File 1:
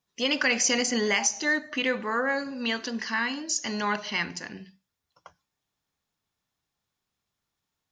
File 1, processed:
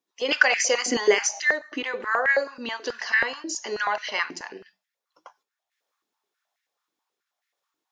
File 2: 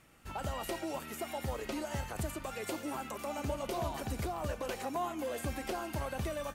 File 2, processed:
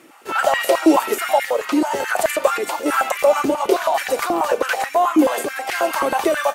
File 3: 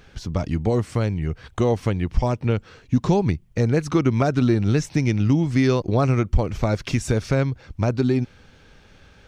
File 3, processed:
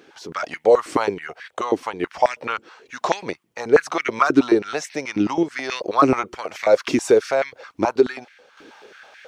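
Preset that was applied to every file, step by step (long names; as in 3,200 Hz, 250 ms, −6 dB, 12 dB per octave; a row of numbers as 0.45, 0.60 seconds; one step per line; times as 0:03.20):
sample-and-hold tremolo
high-pass on a step sequencer 9.3 Hz 320–1,900 Hz
normalise the peak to −2 dBFS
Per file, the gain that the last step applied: +1.5, +18.5, +5.0 decibels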